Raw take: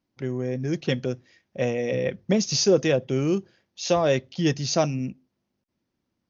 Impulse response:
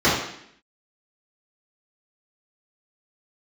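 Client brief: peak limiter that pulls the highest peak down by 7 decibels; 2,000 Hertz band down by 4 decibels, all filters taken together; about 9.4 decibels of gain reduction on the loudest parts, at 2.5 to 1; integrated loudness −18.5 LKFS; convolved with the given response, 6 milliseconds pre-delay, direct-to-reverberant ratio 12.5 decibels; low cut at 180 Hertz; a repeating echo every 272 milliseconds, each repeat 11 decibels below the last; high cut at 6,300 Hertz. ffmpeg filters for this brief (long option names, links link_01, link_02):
-filter_complex "[0:a]highpass=180,lowpass=6300,equalizer=frequency=2000:width_type=o:gain=-5,acompressor=threshold=-29dB:ratio=2.5,alimiter=limit=-23.5dB:level=0:latency=1,aecho=1:1:272|544|816:0.282|0.0789|0.0221,asplit=2[link_01][link_02];[1:a]atrim=start_sample=2205,adelay=6[link_03];[link_02][link_03]afir=irnorm=-1:irlink=0,volume=-34dB[link_04];[link_01][link_04]amix=inputs=2:normalize=0,volume=15dB"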